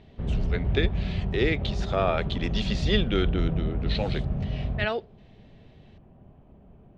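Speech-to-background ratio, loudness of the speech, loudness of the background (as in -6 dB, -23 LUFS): 0.5 dB, -29.5 LUFS, -30.0 LUFS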